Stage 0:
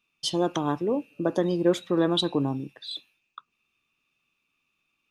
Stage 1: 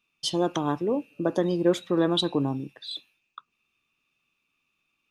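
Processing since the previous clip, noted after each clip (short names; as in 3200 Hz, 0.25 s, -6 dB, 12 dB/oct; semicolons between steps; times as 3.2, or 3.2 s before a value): nothing audible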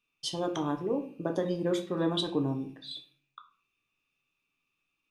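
short-mantissa float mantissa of 8-bit; shoebox room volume 42 m³, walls mixed, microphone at 0.37 m; gain -6.5 dB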